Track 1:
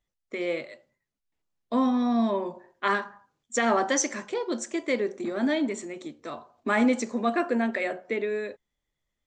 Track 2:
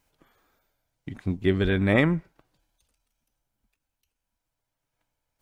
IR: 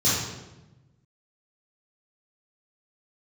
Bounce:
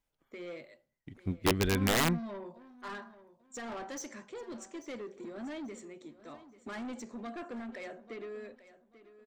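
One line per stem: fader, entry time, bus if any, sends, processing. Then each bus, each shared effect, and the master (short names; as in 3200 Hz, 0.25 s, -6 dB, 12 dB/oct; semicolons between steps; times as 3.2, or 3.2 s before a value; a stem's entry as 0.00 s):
-12.5 dB, 0.00 s, no send, echo send -16 dB, low shelf 210 Hz +6.5 dB; soft clip -25 dBFS, distortion -9 dB
-4.0 dB, 0.00 s, no send, no echo send, wrapped overs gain 14.5 dB; upward expander 1.5:1, over -41 dBFS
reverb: off
echo: feedback echo 0.839 s, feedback 26%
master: dry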